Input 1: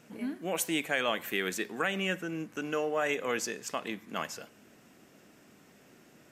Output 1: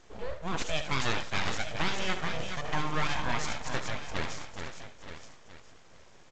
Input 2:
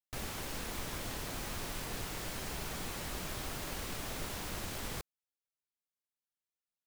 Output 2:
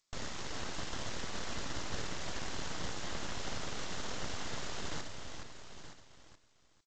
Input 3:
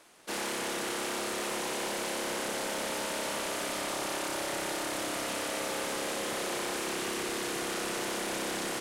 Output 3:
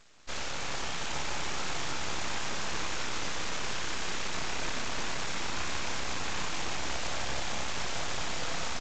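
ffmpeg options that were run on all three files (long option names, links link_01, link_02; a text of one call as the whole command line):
ffmpeg -i in.wav -filter_complex "[0:a]asuperstop=centerf=2400:order=8:qfactor=4.7,asplit=2[link_01][link_02];[link_02]aecho=0:1:58|74|422|873:0.126|0.316|0.473|0.133[link_03];[link_01][link_03]amix=inputs=2:normalize=0,aeval=exprs='abs(val(0))':channel_layout=same,asplit=2[link_04][link_05];[link_05]aecho=0:1:923:0.251[link_06];[link_04][link_06]amix=inputs=2:normalize=0,volume=2.5dB" -ar 16000 -c:a g722 out.g722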